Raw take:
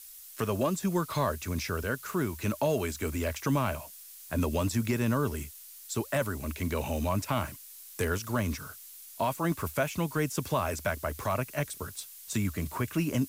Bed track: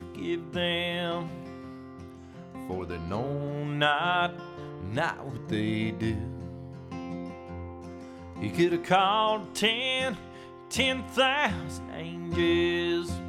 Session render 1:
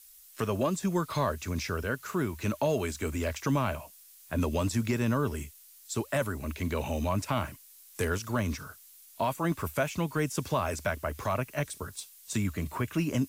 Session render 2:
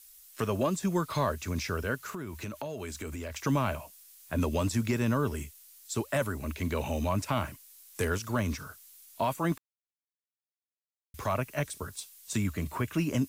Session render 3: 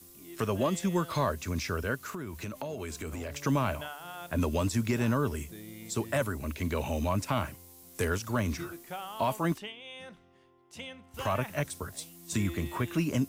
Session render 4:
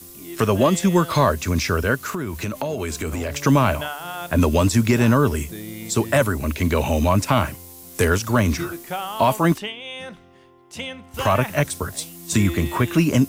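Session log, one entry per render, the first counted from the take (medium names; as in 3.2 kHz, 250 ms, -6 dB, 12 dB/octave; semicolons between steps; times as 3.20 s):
noise print and reduce 6 dB
1.99–3.37 s: compression, threshold -34 dBFS; 9.58–11.14 s: mute
add bed track -17.5 dB
trim +11.5 dB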